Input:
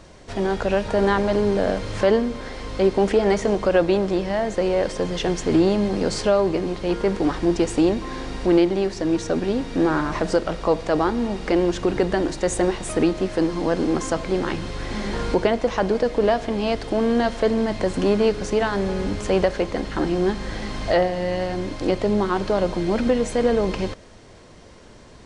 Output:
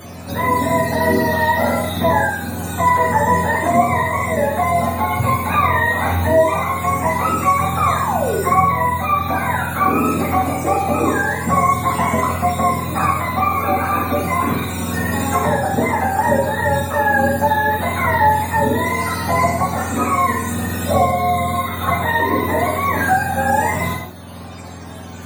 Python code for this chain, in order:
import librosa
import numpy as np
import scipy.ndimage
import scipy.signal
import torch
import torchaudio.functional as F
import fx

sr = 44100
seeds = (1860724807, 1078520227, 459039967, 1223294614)

y = fx.octave_mirror(x, sr, pivot_hz=620.0)
y = fx.spec_paint(y, sr, seeds[0], shape='fall', start_s=7.98, length_s=0.4, low_hz=350.0, high_hz=1200.0, level_db=-26.0)
y = fx.rev_gated(y, sr, seeds[1], gate_ms=230, shape='falling', drr_db=-2.5)
y = fx.band_squash(y, sr, depth_pct=40)
y = y * librosa.db_to_amplitude(2.0)